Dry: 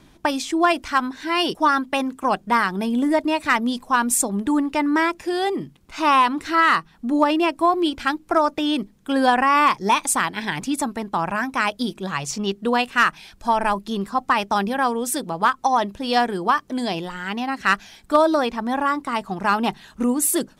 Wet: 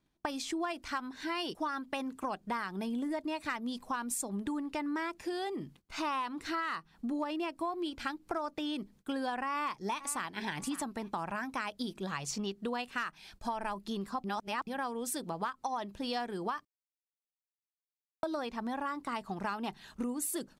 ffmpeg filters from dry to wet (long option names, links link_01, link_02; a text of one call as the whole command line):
ffmpeg -i in.wav -filter_complex "[0:a]asplit=2[link_01][link_02];[link_02]afade=type=in:start_time=9.45:duration=0.01,afade=type=out:start_time=10.29:duration=0.01,aecho=0:1:550|1100:0.149624|0.0224435[link_03];[link_01][link_03]amix=inputs=2:normalize=0,asplit=5[link_04][link_05][link_06][link_07][link_08];[link_04]atrim=end=14.242[link_09];[link_05]atrim=start=14.238:end=14.672,asetpts=PTS-STARTPTS,areverse[link_10];[link_06]atrim=start=14.668:end=16.65,asetpts=PTS-STARTPTS,afade=type=out:start_time=1.978:duration=0.004:curve=hsin[link_11];[link_07]atrim=start=16.65:end=18.23,asetpts=PTS-STARTPTS,volume=0[link_12];[link_08]atrim=start=18.23,asetpts=PTS-STARTPTS,afade=type=in:duration=0.004:curve=hsin[link_13];[link_09][link_10]acrossfade=duration=0.004:curve1=hsin:curve2=hsin[link_14];[link_11][link_12][link_13]concat=n=3:v=0:a=1[link_15];[link_14][link_15]acrossfade=duration=0.004:curve1=hsin:curve2=hsin,agate=range=-21dB:threshold=-47dB:ratio=16:detection=peak,equalizer=frequency=4400:width=6:gain=3,acompressor=threshold=-27dB:ratio=5,volume=-6.5dB" out.wav